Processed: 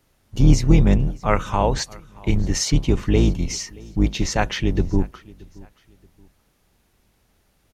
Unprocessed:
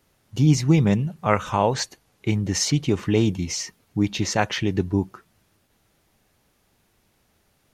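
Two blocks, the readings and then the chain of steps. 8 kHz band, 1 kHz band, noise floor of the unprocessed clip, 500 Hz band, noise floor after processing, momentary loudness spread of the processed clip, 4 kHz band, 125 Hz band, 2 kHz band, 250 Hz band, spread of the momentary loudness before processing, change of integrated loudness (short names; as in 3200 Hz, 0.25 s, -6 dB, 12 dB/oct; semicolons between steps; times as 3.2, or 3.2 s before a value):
0.0 dB, 0.0 dB, -66 dBFS, +0.5 dB, -64 dBFS, 13 LU, 0.0 dB, +2.0 dB, 0.0 dB, +0.5 dB, 11 LU, +1.5 dB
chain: octaver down 2 oct, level +3 dB; feedback echo 0.626 s, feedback 33%, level -23.5 dB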